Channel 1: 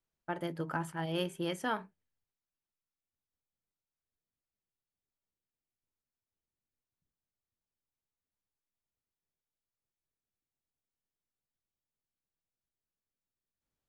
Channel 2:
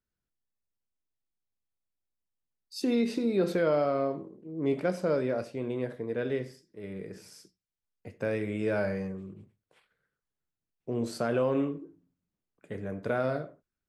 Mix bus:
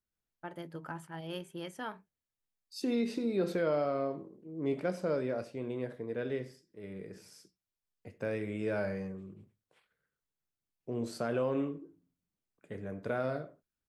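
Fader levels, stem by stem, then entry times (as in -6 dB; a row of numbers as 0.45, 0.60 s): -6.5, -4.5 dB; 0.15, 0.00 s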